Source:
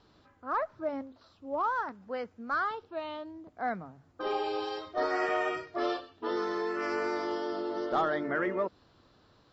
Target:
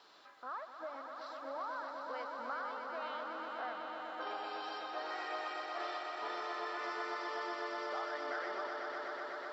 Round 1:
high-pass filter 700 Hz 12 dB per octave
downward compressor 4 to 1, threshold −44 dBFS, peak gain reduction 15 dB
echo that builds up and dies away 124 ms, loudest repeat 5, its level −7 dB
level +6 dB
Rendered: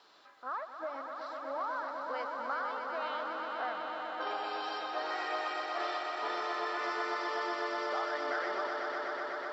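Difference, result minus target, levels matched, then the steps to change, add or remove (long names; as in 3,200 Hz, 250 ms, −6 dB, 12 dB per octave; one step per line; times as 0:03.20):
downward compressor: peak gain reduction −5 dB
change: downward compressor 4 to 1, threshold −51 dBFS, peak gain reduction 20.5 dB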